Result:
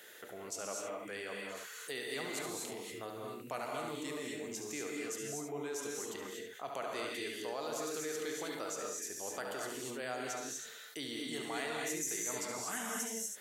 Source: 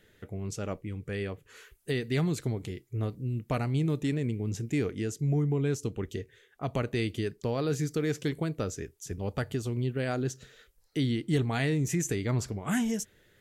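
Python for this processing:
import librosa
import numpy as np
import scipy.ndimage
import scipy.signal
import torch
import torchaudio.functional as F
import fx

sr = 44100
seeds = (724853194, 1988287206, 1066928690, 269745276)

p1 = scipy.signal.sosfilt(scipy.signal.butter(2, 890.0, 'highpass', fs=sr, output='sos'), x)
p2 = fx.peak_eq(p1, sr, hz=2400.0, db=-9.5, octaves=2.4)
p3 = p2 + fx.echo_single(p2, sr, ms=71, db=-9.0, dry=0)
p4 = fx.rev_gated(p3, sr, seeds[0], gate_ms=270, shape='rising', drr_db=-0.5)
p5 = fx.env_flatten(p4, sr, amount_pct=50)
y = F.gain(torch.from_numpy(p5), -1.5).numpy()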